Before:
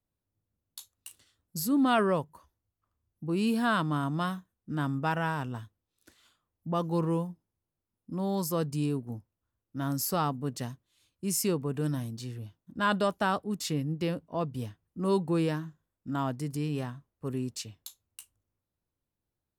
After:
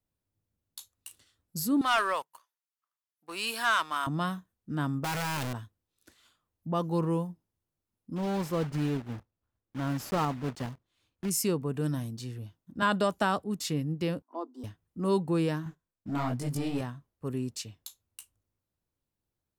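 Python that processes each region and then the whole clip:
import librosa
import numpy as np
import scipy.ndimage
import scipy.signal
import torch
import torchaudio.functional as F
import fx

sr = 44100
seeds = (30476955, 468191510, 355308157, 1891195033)

y = fx.chain(x, sr, fx.highpass(hz=1100.0, slope=12),
    fx.leveller(passes=2), at=(1.81, 4.07))
y = fx.chain(y, sr, fx.clip_1bit(),
    fx.low_shelf(hz=160.0, db=-5.5), at=(5.04, 5.53))
y = fx.chain(y, sr, fx.block_float(bits=3),
    fx.lowpass(hz=2100.0, slope=6), at=(8.16, 11.31))
y = fx.chain(y, sr, fx.peak_eq(hz=7400.0, db=4.5, octaves=0.36),
    fx.band_squash(depth_pct=70), at=(12.82, 13.44))
y = fx.chain(y, sr, fx.cheby_ripple_highpass(hz=240.0, ripple_db=9),
    fx.env_phaser(low_hz=470.0, high_hz=2400.0, full_db=-39.5), at=(14.22, 14.64))
y = fx.chain(y, sr, fx.leveller(passes=2),
    fx.detune_double(cents=39), at=(15.64, 16.81))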